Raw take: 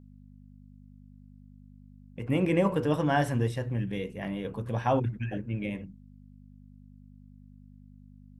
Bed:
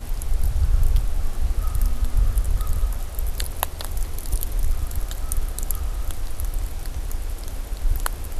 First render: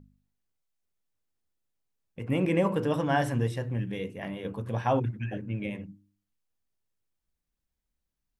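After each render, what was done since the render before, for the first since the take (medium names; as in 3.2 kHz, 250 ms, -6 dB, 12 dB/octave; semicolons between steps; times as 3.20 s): de-hum 50 Hz, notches 7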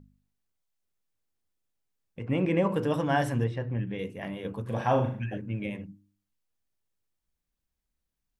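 2.19–2.70 s: distance through air 86 m; 3.44–3.99 s: low-pass 3 kHz; 4.63–5.23 s: flutter echo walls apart 6.7 m, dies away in 0.45 s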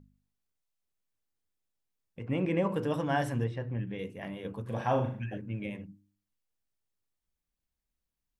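trim -3.5 dB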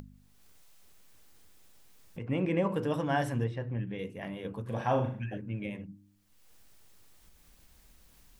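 upward compressor, threshold -36 dBFS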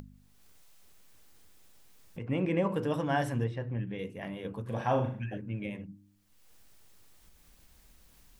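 no audible change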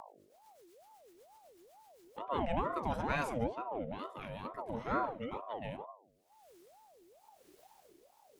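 rotary cabinet horn 8 Hz, later 0.9 Hz, at 1.74 s; ring modulator with a swept carrier 610 Hz, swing 45%, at 2.2 Hz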